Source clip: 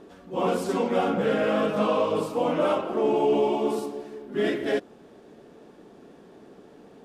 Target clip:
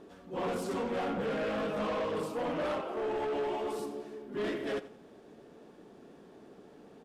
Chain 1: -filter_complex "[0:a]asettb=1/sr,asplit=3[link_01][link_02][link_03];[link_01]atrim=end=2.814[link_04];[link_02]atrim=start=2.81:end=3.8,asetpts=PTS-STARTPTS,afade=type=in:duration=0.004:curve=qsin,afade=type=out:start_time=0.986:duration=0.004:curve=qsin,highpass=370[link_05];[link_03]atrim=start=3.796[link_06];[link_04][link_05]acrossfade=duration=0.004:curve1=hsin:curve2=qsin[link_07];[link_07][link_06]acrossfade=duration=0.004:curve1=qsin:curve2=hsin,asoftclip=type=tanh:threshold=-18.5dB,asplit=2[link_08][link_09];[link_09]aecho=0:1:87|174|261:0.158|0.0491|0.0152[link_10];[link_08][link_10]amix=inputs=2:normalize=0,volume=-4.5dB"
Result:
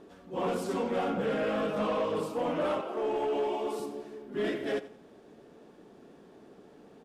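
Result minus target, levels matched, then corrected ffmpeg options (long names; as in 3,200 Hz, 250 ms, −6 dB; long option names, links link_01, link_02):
soft clipping: distortion −7 dB
-filter_complex "[0:a]asettb=1/sr,asplit=3[link_01][link_02][link_03];[link_01]atrim=end=2.814[link_04];[link_02]atrim=start=2.81:end=3.8,asetpts=PTS-STARTPTS,afade=type=in:duration=0.004:curve=qsin,afade=type=out:start_time=0.986:duration=0.004:curve=qsin,highpass=370[link_05];[link_03]atrim=start=3.796[link_06];[link_04][link_05]acrossfade=duration=0.004:curve1=hsin:curve2=qsin[link_07];[link_07][link_06]acrossfade=duration=0.004:curve1=qsin:curve2=hsin,asoftclip=type=tanh:threshold=-25dB,asplit=2[link_08][link_09];[link_09]aecho=0:1:87|174|261:0.158|0.0491|0.0152[link_10];[link_08][link_10]amix=inputs=2:normalize=0,volume=-4.5dB"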